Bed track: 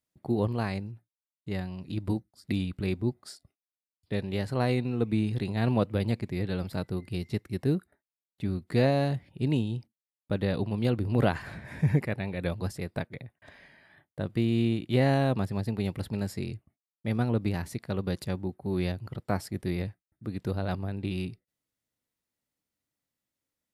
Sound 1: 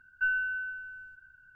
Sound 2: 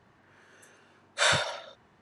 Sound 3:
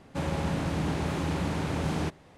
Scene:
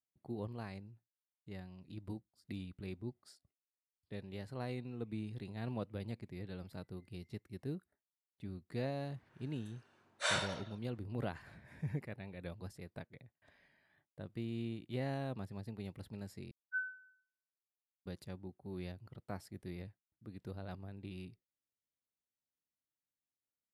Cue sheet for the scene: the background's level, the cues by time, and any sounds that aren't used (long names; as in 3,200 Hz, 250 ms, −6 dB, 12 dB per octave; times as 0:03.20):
bed track −15 dB
0:09.03: mix in 2 −10 dB
0:16.51: overwrite with 1 −9.5 dB + every bin expanded away from the loudest bin 4 to 1
not used: 3